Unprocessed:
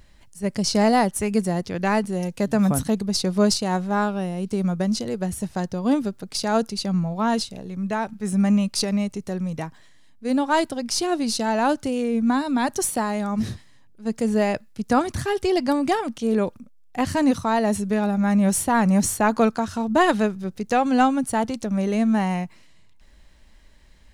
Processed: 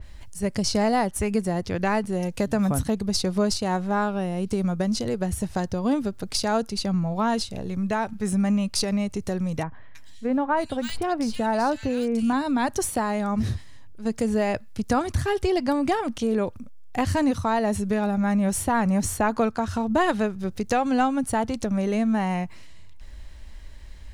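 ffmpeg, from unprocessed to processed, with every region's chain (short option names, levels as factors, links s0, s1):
-filter_complex "[0:a]asettb=1/sr,asplit=3[s0][s1][s2];[s0]atrim=end=9.634[s3];[s1]atrim=start=9.63:end=12.33,asetpts=PTS-STARTPTS,afade=t=in:d=0.004:c=qsin,afade=t=out:st=2.696:d=0.004:c=qsin,deesser=0.65,equalizer=f=350:w=4.7:g=-6.5,acrossover=split=2400[s4][s5];[s5]adelay=320[s6];[s4][s6]amix=inputs=2:normalize=0,atrim=end_sample=119070[s7];[s2]atrim=start=12.326[s8];[s3][s7]acrossfade=d=0.004:c1=hsin:c2=qsin[s9];[s9][s8]acrossfade=d=0.004:c1=qsin:c2=hsin,lowshelf=f=120:t=q:w=1.5:g=6.5,acompressor=threshold=0.0316:ratio=2,adynamicequalizer=threshold=0.00501:dfrequency=3200:dqfactor=0.7:tfrequency=3200:tqfactor=0.7:attack=5:release=100:ratio=0.375:range=2:mode=cutabove:tftype=highshelf,volume=1.78"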